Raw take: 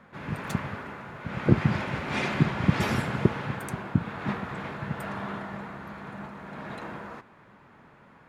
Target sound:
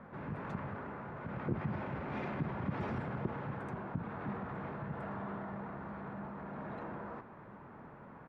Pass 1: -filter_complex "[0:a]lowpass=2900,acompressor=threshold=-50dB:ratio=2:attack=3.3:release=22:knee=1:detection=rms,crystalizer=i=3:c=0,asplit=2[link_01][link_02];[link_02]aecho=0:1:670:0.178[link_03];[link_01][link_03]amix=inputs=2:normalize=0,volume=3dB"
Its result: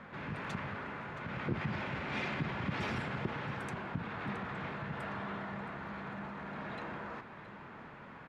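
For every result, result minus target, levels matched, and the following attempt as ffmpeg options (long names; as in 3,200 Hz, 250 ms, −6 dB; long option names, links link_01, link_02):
4,000 Hz band +12.5 dB; echo-to-direct +9.5 dB
-filter_complex "[0:a]lowpass=1100,acompressor=threshold=-50dB:ratio=2:attack=3.3:release=22:knee=1:detection=rms,crystalizer=i=3:c=0,asplit=2[link_01][link_02];[link_02]aecho=0:1:670:0.178[link_03];[link_01][link_03]amix=inputs=2:normalize=0,volume=3dB"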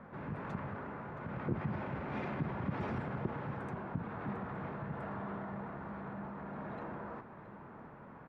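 echo-to-direct +9.5 dB
-filter_complex "[0:a]lowpass=1100,acompressor=threshold=-50dB:ratio=2:attack=3.3:release=22:knee=1:detection=rms,crystalizer=i=3:c=0,asplit=2[link_01][link_02];[link_02]aecho=0:1:670:0.0596[link_03];[link_01][link_03]amix=inputs=2:normalize=0,volume=3dB"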